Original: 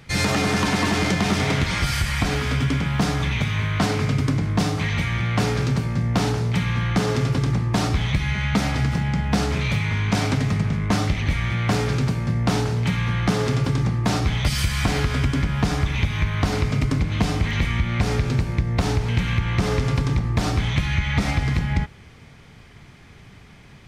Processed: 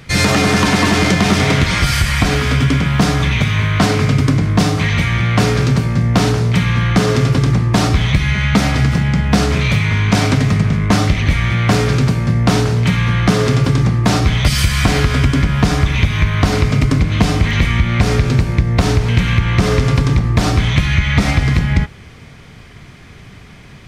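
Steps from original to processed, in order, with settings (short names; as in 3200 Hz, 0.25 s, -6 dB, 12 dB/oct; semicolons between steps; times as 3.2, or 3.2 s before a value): notch 850 Hz, Q 14; gain +8 dB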